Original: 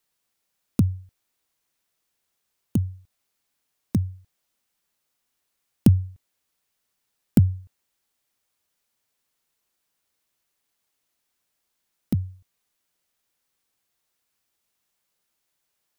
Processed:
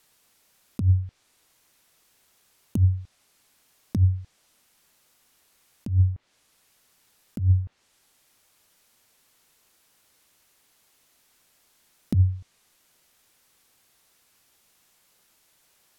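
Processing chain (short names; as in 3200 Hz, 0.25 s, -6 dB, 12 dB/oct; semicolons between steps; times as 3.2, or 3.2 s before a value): treble ducked by the level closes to 1300 Hz, closed at -22 dBFS; negative-ratio compressor -28 dBFS, ratio -1; gain +7.5 dB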